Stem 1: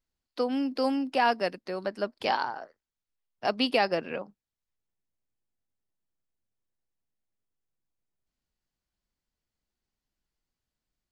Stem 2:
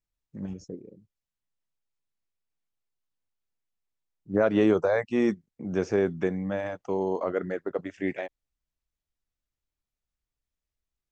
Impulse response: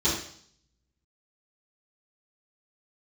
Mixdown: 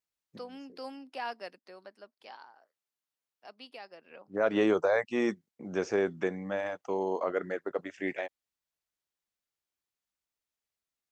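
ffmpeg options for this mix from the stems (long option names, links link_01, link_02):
-filter_complex "[0:a]volume=-2dB,afade=type=out:start_time=1.58:duration=0.54:silence=0.354813,afade=type=in:start_time=4.02:duration=0.23:silence=0.334965,asplit=2[link_01][link_02];[1:a]volume=0.5dB[link_03];[link_02]apad=whole_len=490292[link_04];[link_03][link_04]sidechaincompress=threshold=-57dB:ratio=5:attack=7.5:release=265[link_05];[link_01][link_05]amix=inputs=2:normalize=0,highpass=frequency=500:poles=1"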